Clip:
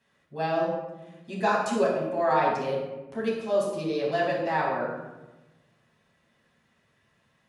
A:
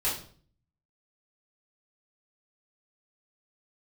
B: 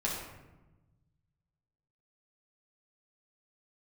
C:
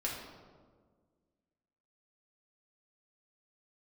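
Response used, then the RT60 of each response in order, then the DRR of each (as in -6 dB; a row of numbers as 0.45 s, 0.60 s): B; 0.50 s, 1.1 s, 1.6 s; -10.0 dB, -5.0 dB, -4.0 dB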